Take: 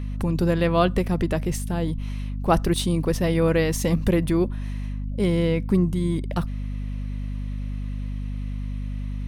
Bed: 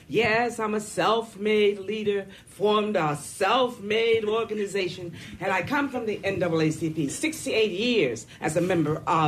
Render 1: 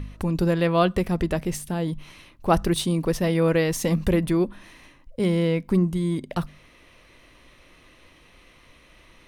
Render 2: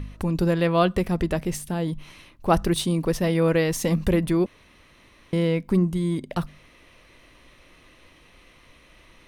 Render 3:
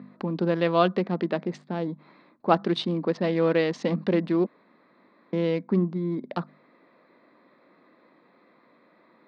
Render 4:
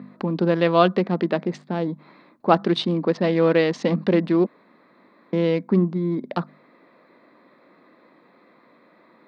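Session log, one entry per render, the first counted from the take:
hum removal 50 Hz, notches 5
0:04.46–0:05.33: fill with room tone
adaptive Wiener filter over 15 samples; elliptic band-pass filter 200–4,400 Hz, stop band 50 dB
level +4.5 dB; brickwall limiter −2 dBFS, peak gain reduction 1 dB

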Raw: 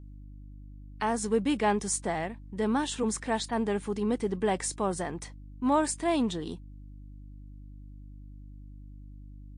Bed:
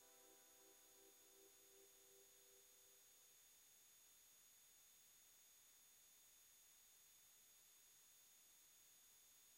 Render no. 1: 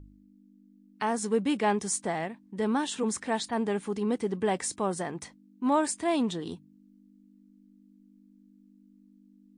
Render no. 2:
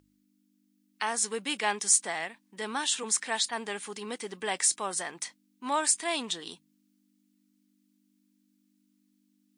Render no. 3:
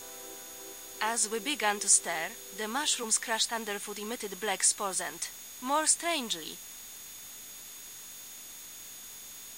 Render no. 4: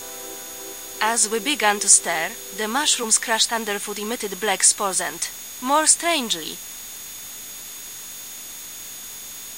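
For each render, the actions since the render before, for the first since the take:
hum removal 50 Hz, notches 3
high-pass filter 320 Hz 6 dB per octave; tilt shelving filter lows −9 dB, about 1,100 Hz
mix in bed +25 dB
level +10 dB; brickwall limiter −1 dBFS, peak gain reduction 1.5 dB

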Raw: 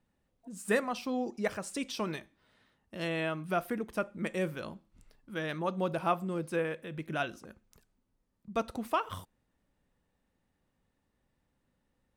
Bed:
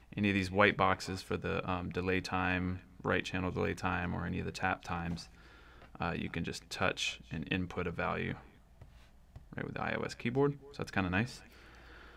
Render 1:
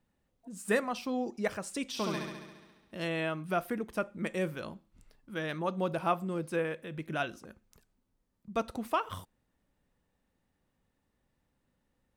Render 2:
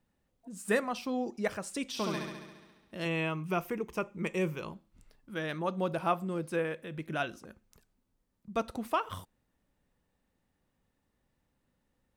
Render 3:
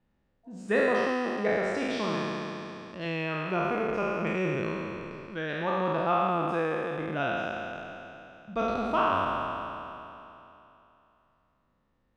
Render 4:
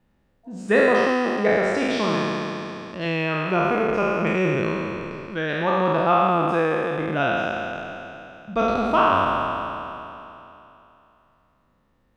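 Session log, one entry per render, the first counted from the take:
0:01.87–0:02.95: flutter between parallel walls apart 11.8 metres, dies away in 1.2 s
0:03.05–0:04.72: EQ curve with evenly spaced ripples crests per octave 0.75, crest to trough 8 dB
peak hold with a decay on every bin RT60 2.99 s; high-frequency loss of the air 160 metres
level +7.5 dB

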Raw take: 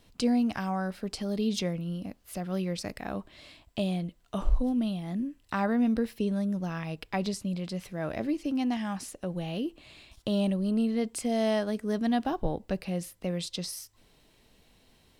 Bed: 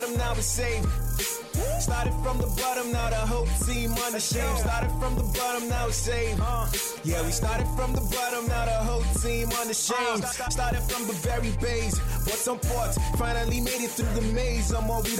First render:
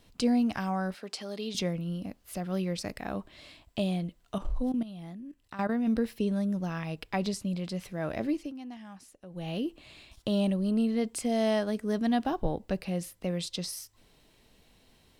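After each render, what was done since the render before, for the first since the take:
0:00.94–0:01.55: meter weighting curve A
0:04.38–0:05.87: output level in coarse steps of 14 dB
0:08.35–0:09.49: duck −13.5 dB, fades 0.19 s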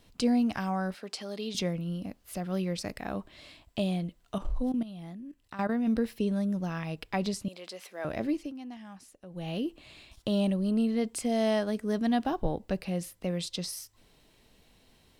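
0:07.48–0:08.05: Bessel high-pass filter 510 Hz, order 4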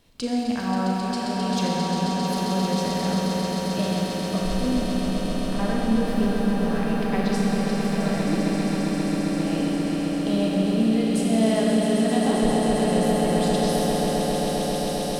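echo that builds up and dies away 133 ms, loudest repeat 8, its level −8 dB
four-comb reverb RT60 3.8 s, combs from 28 ms, DRR −3 dB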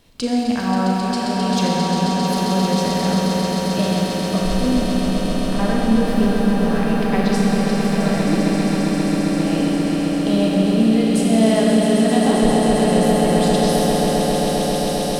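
level +5.5 dB

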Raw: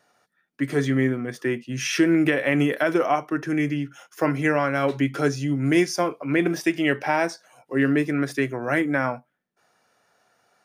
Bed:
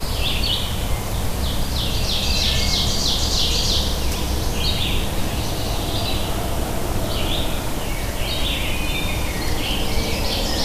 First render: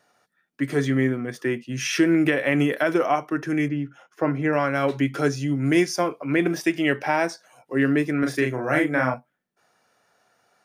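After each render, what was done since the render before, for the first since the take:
0:03.68–0:04.53: low-pass filter 1,300 Hz 6 dB per octave
0:08.19–0:09.14: double-tracking delay 39 ms −3 dB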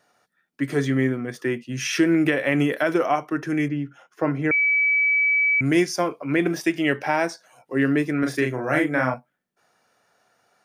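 0:04.51–0:05.61: beep over 2,290 Hz −16.5 dBFS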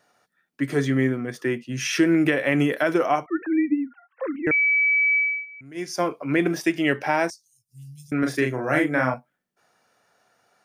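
0:03.26–0:04.47: three sine waves on the formant tracks
0:05.16–0:06.04: duck −22.5 dB, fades 0.30 s
0:07.30–0:08.12: inverse Chebyshev band-stop filter 310–1,900 Hz, stop band 60 dB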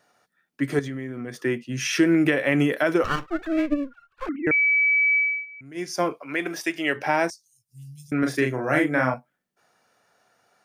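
0:00.79–0:01.36: downward compressor 10 to 1, threshold −28 dBFS
0:03.04–0:04.29: lower of the sound and its delayed copy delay 0.73 ms
0:06.17–0:06.95: high-pass filter 1,100 Hz → 470 Hz 6 dB per octave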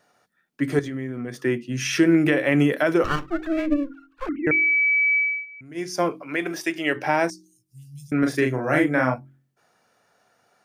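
low-shelf EQ 460 Hz +3.5 dB
hum removal 45.21 Hz, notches 8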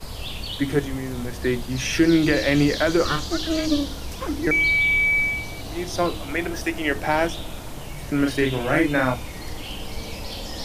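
mix in bed −11 dB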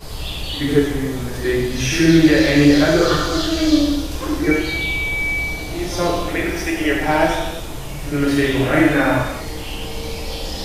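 echo ahead of the sound 72 ms −13 dB
reverb whose tail is shaped and stops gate 380 ms falling, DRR −3 dB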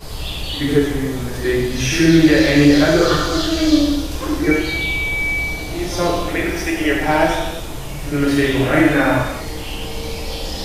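level +1 dB
brickwall limiter −2 dBFS, peak gain reduction 1.5 dB

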